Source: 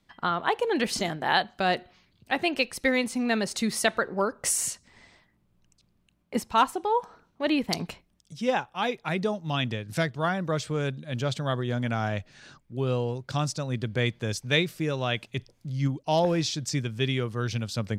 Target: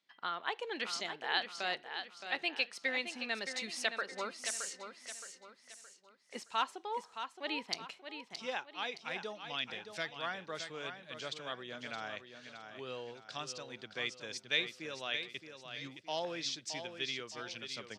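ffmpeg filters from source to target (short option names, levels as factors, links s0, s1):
-af "highpass=550,lowpass=5100,equalizer=f=770:t=o:w=2.4:g=-9.5,aecho=1:1:619|1238|1857|2476:0.376|0.15|0.0601|0.0241,volume=0.668"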